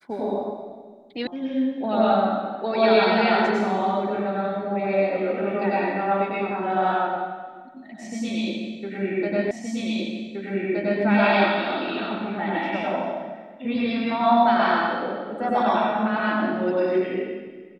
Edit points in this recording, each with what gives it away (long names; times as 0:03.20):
0:01.27: cut off before it has died away
0:09.51: the same again, the last 1.52 s